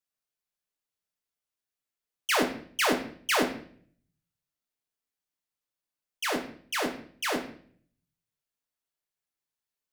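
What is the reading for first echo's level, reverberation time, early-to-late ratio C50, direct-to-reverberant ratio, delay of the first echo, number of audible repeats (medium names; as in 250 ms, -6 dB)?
no echo, 0.55 s, 9.5 dB, 2.5 dB, no echo, no echo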